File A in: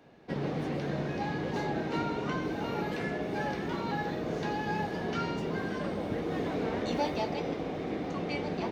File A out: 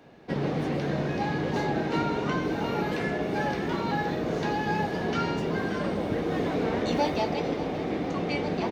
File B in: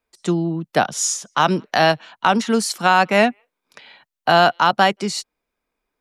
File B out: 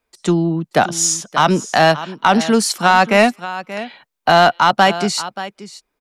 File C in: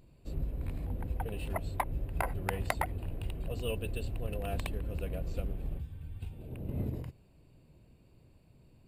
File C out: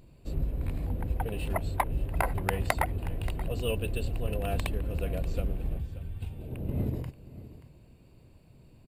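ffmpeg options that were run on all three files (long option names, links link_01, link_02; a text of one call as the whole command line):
ffmpeg -i in.wav -af "aecho=1:1:580:0.158,acontrast=44,volume=-1dB" out.wav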